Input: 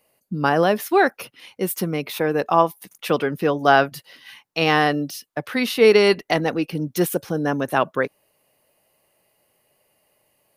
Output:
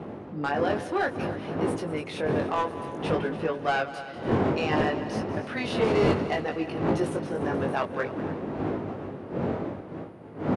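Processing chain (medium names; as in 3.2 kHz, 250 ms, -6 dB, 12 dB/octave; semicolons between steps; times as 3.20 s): single-diode clipper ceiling -11.5 dBFS; wind noise 290 Hz -18 dBFS; high-pass 83 Hz 24 dB/octave; tone controls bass -9 dB, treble -8 dB; in parallel at -2 dB: compression, threshold -26 dBFS, peak gain reduction 16 dB; on the sum: hard clipper -9 dBFS, distortion -17 dB; chorus 0.59 Hz, delay 18.5 ms, depth 3.5 ms; on a send: multi-head delay 97 ms, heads second and third, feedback 51%, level -15 dB; on the sum: resampled via 22.05 kHz; trim -5.5 dB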